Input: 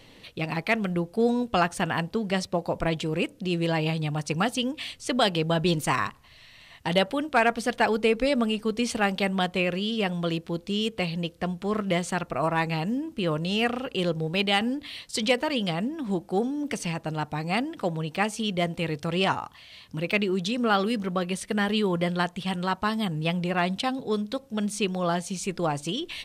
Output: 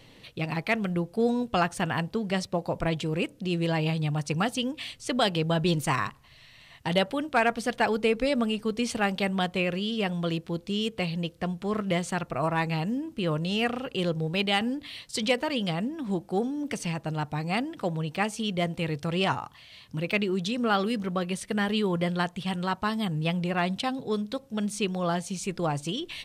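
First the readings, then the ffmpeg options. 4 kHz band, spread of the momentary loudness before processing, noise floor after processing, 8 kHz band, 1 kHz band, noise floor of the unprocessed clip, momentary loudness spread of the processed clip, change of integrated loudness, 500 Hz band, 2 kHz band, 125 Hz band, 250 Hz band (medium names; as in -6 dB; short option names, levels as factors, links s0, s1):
-2.0 dB, 7 LU, -54 dBFS, -2.0 dB, -2.0 dB, -53 dBFS, 6 LU, -1.5 dB, -2.0 dB, -2.0 dB, 0.0 dB, -1.0 dB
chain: -af "equalizer=f=130:w=2.7:g=5.5,volume=0.794"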